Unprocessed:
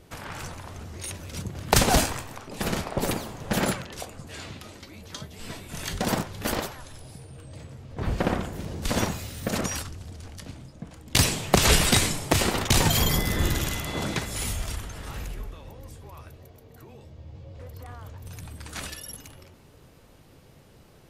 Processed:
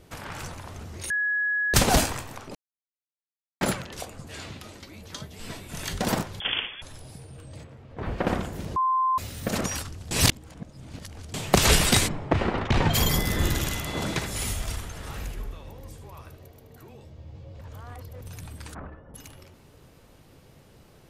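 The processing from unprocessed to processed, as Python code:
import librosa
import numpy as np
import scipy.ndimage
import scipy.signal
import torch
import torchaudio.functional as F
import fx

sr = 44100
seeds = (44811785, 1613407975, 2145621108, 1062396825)

y = fx.freq_invert(x, sr, carrier_hz=3400, at=(6.4, 6.82))
y = fx.bass_treble(y, sr, bass_db=-5, treble_db=-13, at=(7.63, 8.26), fade=0.02)
y = fx.lowpass(y, sr, hz=fx.line((12.07, 1400.0), (12.93, 2700.0)), slope=12, at=(12.07, 12.93), fade=0.02)
y = fx.echo_single(y, sr, ms=76, db=-10.0, at=(13.99, 16.9))
y = fx.lowpass(y, sr, hz=1300.0, slope=24, at=(18.73, 19.14), fade=0.02)
y = fx.edit(y, sr, fx.bleep(start_s=1.1, length_s=0.64, hz=1680.0, db=-22.5),
    fx.silence(start_s=2.55, length_s=1.06),
    fx.bleep(start_s=8.76, length_s=0.42, hz=1040.0, db=-20.0),
    fx.reverse_span(start_s=10.11, length_s=1.23),
    fx.reverse_span(start_s=17.61, length_s=0.6), tone=tone)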